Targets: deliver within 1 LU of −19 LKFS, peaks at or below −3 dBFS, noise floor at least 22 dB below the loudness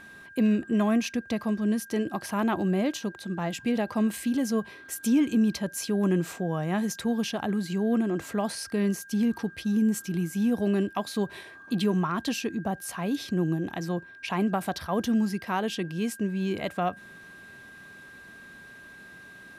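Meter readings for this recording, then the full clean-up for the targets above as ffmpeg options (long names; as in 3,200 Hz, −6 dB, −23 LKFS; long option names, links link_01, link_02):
interfering tone 1,600 Hz; level of the tone −46 dBFS; integrated loudness −28.0 LKFS; sample peak −14.0 dBFS; target loudness −19.0 LKFS
→ -af "bandreject=frequency=1600:width=30"
-af "volume=9dB"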